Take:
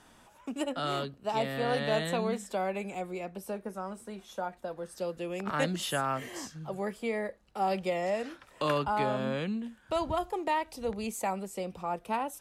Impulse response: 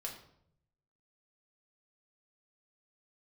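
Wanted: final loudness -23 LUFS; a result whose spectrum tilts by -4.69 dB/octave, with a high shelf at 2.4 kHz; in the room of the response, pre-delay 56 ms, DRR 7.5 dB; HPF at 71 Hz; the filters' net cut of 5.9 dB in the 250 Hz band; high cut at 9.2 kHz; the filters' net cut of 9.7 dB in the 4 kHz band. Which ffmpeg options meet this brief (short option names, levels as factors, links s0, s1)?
-filter_complex "[0:a]highpass=71,lowpass=9200,equalizer=f=250:t=o:g=-8,highshelf=f=2400:g=-6,equalizer=f=4000:t=o:g=-8,asplit=2[s0][s1];[1:a]atrim=start_sample=2205,adelay=56[s2];[s1][s2]afir=irnorm=-1:irlink=0,volume=0.473[s3];[s0][s3]amix=inputs=2:normalize=0,volume=3.98"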